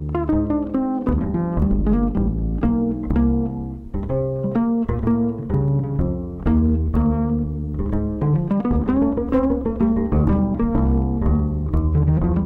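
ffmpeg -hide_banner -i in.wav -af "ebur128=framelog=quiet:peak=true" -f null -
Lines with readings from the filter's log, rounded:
Integrated loudness:
  I:         -20.7 LUFS
  Threshold: -30.7 LUFS
Loudness range:
  LRA:         2.0 LU
  Threshold: -40.8 LUFS
  LRA low:   -21.7 LUFS
  LRA high:  -19.7 LUFS
True peak:
  Peak:       -8.4 dBFS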